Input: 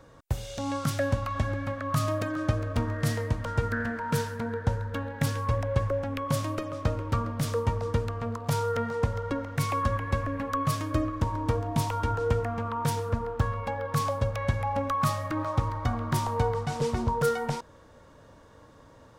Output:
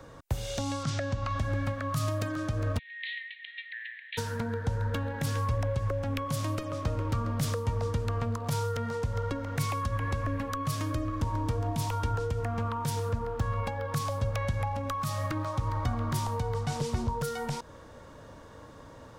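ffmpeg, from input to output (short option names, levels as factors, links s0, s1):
-filter_complex "[0:a]asettb=1/sr,asplit=3[s0][s1][s2];[s0]atrim=end=0.834[s3];[s1]atrim=start=0.83:end=1.39,asetpts=PTS-STARTPTS,afade=t=in:d=0.004:c=qsin,afade=t=out:st=0.556:d=0.004:c=qsin,lowpass=f=6900:w=0.5412,lowpass=f=6900:w=1.3066[s4];[s2]atrim=start=1.386[s5];[s3][s4]acrossfade=d=0.004:c1=hsin:c2=qsin[s6];[s6][s5]acrossfade=d=0.004:c1=qsin:c2=hsin,asplit=3[s7][s8][s9];[s7]afade=t=out:st=2.77:d=0.02[s10];[s8]asuperpass=centerf=2700:order=20:qfactor=1.2,afade=t=in:st=2.77:d=0.02,afade=t=out:st=4.17:d=0.02[s11];[s9]afade=t=in:st=4.17:d=0.02[s12];[s10][s11][s12]amix=inputs=3:normalize=0,alimiter=limit=0.0794:level=0:latency=1:release=190,acrossover=split=150|3000[s13][s14][s15];[s14]acompressor=threshold=0.0141:ratio=6[s16];[s13][s16][s15]amix=inputs=3:normalize=0,volume=1.68"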